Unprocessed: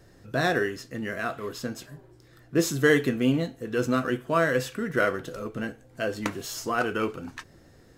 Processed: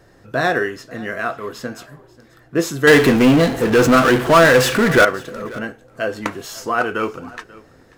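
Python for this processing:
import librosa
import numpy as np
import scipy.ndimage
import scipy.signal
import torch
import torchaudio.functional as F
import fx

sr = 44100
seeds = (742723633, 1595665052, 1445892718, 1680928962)

y = fx.peak_eq(x, sr, hz=1000.0, db=7.0, octaves=2.8)
y = fx.power_curve(y, sr, exponent=0.5, at=(2.87, 5.05))
y = y + 10.0 ** (-21.5 / 20.0) * np.pad(y, (int(538 * sr / 1000.0), 0))[:len(y)]
y = y * 10.0 ** (1.5 / 20.0)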